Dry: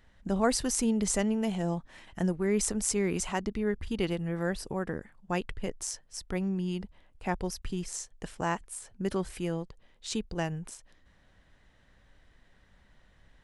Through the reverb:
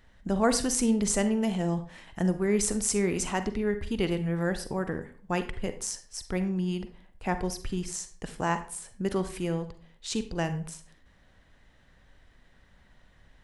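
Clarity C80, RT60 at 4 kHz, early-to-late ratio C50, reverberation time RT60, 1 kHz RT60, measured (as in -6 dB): 15.5 dB, 0.35 s, 12.0 dB, 0.45 s, 0.45 s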